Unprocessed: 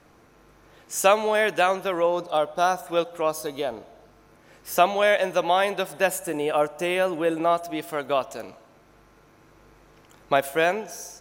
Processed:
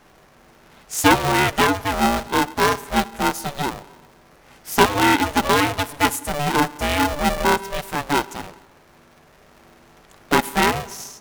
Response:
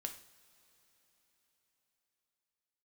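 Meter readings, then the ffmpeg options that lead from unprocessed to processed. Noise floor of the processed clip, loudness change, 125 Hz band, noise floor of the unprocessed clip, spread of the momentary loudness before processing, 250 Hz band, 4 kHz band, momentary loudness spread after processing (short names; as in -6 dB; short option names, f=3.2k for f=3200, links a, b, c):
-52 dBFS, +4.0 dB, +13.0 dB, -56 dBFS, 11 LU, +9.5 dB, +8.0 dB, 11 LU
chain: -af "aeval=exprs='val(0)*sgn(sin(2*PI*290*n/s))':c=same,volume=3.5dB"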